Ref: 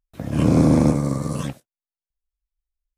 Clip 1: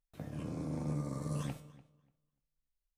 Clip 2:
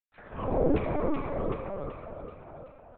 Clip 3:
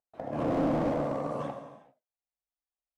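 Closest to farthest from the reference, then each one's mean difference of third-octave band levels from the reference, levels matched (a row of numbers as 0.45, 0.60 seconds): 1, 3, 2; 5.0, 7.0, 10.5 decibels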